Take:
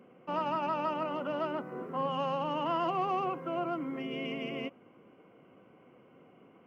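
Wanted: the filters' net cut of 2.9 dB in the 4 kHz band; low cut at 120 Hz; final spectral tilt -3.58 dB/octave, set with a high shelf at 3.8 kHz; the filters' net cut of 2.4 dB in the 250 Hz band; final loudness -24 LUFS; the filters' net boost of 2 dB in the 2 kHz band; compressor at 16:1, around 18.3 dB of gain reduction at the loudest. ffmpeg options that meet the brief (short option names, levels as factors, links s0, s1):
-af "highpass=120,equalizer=f=250:t=o:g=-3,equalizer=f=2000:t=o:g=6.5,highshelf=f=3800:g=-6,equalizer=f=4000:t=o:g=-6.5,acompressor=threshold=0.00501:ratio=16,volume=21.1"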